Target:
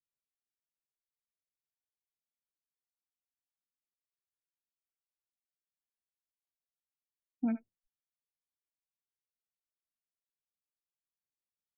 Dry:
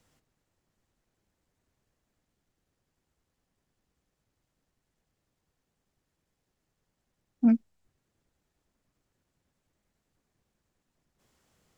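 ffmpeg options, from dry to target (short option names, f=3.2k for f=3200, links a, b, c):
-filter_complex "[0:a]afftdn=nr=36:nf=-45,acrossover=split=550[a][b];[a]acompressor=threshold=-27dB:ratio=6[c];[b]aecho=1:1:71:0.224[d];[c][d]amix=inputs=2:normalize=0,volume=-3dB"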